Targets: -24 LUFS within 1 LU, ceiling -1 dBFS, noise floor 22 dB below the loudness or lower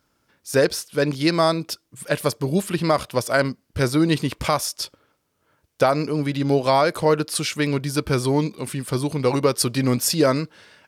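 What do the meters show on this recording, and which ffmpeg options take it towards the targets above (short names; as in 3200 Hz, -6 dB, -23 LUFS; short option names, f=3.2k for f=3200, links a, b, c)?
loudness -22.0 LUFS; peak -6.5 dBFS; loudness target -24.0 LUFS
-> -af "volume=-2dB"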